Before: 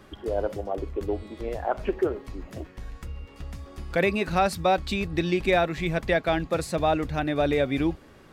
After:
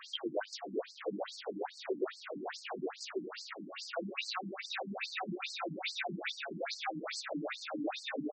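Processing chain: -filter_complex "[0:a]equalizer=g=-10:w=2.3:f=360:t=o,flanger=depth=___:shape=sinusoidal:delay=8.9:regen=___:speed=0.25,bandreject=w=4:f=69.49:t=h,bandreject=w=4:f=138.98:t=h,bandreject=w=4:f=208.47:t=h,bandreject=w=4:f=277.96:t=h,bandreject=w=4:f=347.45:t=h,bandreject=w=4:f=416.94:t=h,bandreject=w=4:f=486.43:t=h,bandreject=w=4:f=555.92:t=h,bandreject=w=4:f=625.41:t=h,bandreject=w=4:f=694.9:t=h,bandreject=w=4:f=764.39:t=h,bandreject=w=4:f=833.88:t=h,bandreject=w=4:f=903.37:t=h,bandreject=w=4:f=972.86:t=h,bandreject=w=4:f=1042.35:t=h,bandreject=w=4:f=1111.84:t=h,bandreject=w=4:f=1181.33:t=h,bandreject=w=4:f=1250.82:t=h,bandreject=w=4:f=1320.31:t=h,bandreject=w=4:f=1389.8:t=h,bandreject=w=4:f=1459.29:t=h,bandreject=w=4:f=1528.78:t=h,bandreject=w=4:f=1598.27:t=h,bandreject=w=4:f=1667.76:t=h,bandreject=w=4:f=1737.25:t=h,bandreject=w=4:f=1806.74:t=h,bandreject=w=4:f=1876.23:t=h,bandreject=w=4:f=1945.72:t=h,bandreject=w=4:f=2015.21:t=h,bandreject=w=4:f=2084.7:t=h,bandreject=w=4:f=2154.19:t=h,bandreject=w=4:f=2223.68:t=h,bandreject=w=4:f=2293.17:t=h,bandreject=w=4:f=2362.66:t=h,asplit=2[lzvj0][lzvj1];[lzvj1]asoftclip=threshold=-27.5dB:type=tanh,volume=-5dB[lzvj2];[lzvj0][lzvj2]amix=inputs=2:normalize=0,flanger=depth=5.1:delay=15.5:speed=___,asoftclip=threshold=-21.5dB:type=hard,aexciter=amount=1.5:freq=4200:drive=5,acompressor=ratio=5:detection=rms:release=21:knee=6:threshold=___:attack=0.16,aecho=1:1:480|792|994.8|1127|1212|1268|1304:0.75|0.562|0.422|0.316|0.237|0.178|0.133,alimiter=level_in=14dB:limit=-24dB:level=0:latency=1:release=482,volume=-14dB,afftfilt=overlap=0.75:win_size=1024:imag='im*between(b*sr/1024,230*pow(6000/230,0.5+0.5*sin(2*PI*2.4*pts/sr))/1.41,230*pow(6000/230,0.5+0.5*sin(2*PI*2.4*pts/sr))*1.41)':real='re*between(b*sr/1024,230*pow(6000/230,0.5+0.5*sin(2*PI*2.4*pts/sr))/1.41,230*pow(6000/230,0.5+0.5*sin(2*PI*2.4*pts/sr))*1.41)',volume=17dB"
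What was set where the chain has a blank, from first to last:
4.2, 31, 1.6, -38dB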